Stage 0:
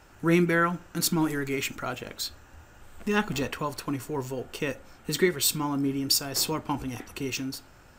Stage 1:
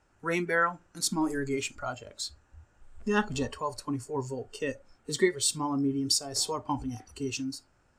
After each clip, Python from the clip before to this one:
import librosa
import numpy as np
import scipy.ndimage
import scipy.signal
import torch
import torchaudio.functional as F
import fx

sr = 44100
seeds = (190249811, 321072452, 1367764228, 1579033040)

y = fx.noise_reduce_blind(x, sr, reduce_db=13)
y = scipy.signal.sosfilt(scipy.signal.butter(4, 10000.0, 'lowpass', fs=sr, output='sos'), y)
y = fx.peak_eq(y, sr, hz=3400.0, db=-4.0, octaves=1.3)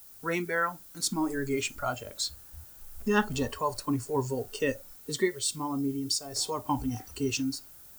y = fx.rider(x, sr, range_db=4, speed_s=0.5)
y = fx.dmg_noise_colour(y, sr, seeds[0], colour='violet', level_db=-51.0)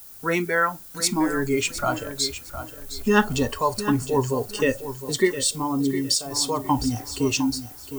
y = fx.echo_feedback(x, sr, ms=710, feedback_pct=24, wet_db=-11.5)
y = y * librosa.db_to_amplitude(7.0)